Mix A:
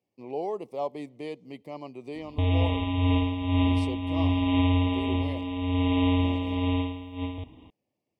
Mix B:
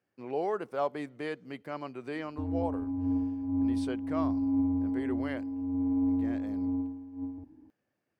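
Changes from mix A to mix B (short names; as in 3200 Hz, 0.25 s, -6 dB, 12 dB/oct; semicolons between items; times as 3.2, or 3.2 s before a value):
background: add vocal tract filter u; master: remove Butterworth band-stop 1500 Hz, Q 1.3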